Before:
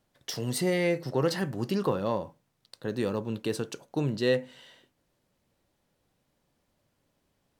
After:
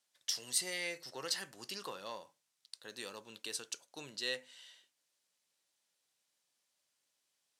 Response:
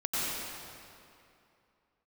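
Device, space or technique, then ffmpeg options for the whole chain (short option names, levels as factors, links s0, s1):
piezo pickup straight into a mixer: -af "lowpass=8200,aderivative,volume=1.68"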